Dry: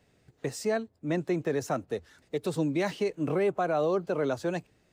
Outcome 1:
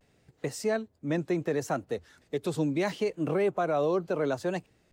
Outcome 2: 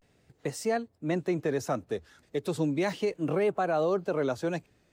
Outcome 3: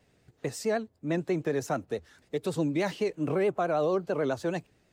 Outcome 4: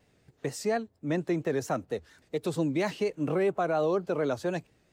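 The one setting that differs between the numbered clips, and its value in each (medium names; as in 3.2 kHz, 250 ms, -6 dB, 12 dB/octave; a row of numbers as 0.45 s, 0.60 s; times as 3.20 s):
vibrato, rate: 0.72 Hz, 0.36 Hz, 9.3 Hz, 4.3 Hz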